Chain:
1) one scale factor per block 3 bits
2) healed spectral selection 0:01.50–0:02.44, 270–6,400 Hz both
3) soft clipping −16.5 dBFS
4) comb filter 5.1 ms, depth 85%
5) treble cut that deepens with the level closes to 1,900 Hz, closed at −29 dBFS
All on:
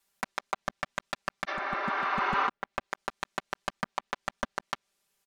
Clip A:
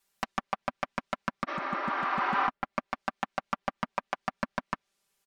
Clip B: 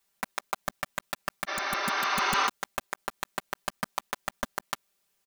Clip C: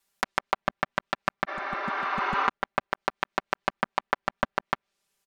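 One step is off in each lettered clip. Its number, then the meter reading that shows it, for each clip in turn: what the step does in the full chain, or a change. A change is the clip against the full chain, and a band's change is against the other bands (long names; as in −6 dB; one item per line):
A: 1, distortion level −6 dB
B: 5, 8 kHz band +10.0 dB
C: 3, distortion level −7 dB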